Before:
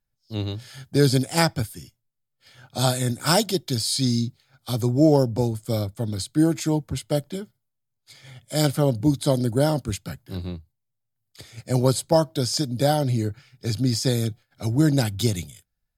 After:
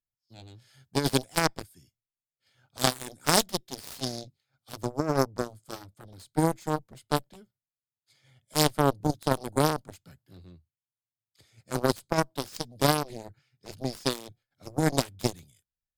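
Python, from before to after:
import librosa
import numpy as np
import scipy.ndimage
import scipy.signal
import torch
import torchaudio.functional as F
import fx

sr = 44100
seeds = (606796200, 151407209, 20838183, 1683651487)

y = fx.cheby_harmonics(x, sr, harmonics=(2, 3, 5, 7), levels_db=(-18, -25, -43, -17), full_scale_db=-2.5)
y = fx.over_compress(y, sr, threshold_db=-21.0, ratio=-0.5)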